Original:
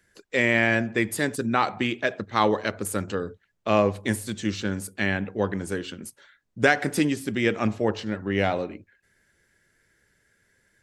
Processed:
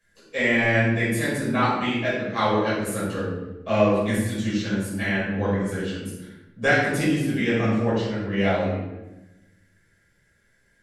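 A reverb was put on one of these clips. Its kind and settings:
rectangular room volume 410 cubic metres, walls mixed, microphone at 5.6 metres
level −11.5 dB

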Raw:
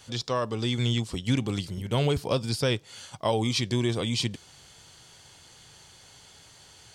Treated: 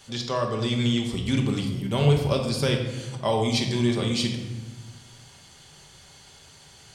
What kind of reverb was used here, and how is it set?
rectangular room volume 720 cubic metres, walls mixed, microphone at 1.2 metres

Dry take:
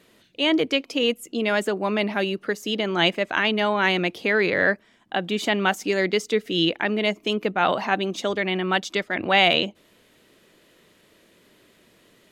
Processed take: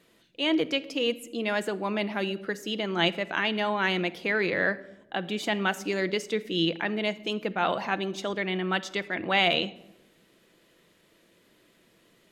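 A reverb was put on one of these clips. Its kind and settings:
rectangular room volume 3,400 cubic metres, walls furnished, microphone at 0.74 metres
level −5.5 dB

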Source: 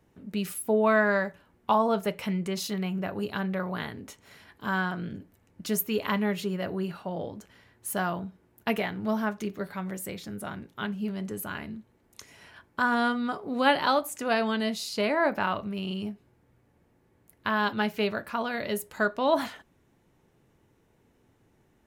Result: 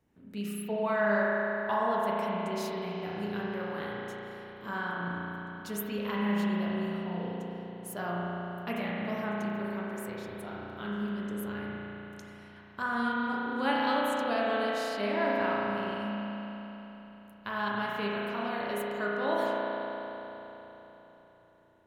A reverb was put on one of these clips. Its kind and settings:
spring reverb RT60 3.8 s, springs 34 ms, chirp 70 ms, DRR −5 dB
level −9.5 dB

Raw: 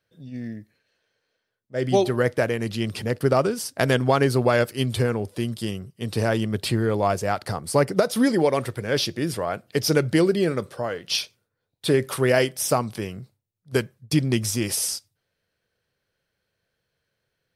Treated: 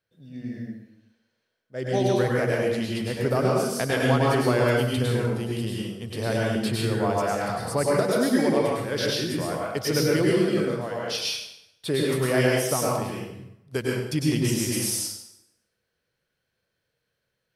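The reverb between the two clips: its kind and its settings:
dense smooth reverb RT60 0.83 s, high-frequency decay 0.85×, pre-delay 90 ms, DRR −4 dB
level −6.5 dB

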